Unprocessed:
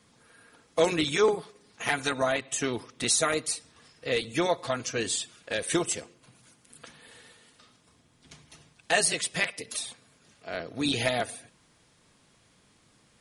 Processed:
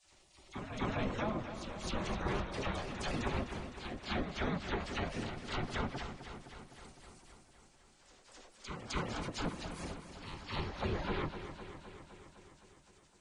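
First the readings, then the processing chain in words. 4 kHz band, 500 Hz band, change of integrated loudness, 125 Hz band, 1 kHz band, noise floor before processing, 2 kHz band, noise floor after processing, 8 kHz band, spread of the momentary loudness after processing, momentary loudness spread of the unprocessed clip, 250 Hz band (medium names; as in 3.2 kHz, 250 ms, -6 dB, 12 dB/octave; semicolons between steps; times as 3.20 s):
-12.5 dB, -12.5 dB, -11.5 dB, 0.0 dB, -6.5 dB, -64 dBFS, -11.0 dB, -65 dBFS, -22.0 dB, 18 LU, 11 LU, -6.0 dB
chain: steep low-pass 7.9 kHz 36 dB/octave; spectral gate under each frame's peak -20 dB weak; tilt shelf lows +9.5 dB, about 630 Hz; low-pass that closes with the level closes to 2.2 kHz, closed at -41.5 dBFS; peak limiter -34.5 dBFS, peak gain reduction 8 dB; compression 2.5:1, threshold -47 dBFS, peak gain reduction 5.5 dB; phase dispersion lows, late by 49 ms, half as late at 1.4 kHz; reverse echo 260 ms -7.5 dB; modulated delay 256 ms, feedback 68%, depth 59 cents, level -10.5 dB; trim +13 dB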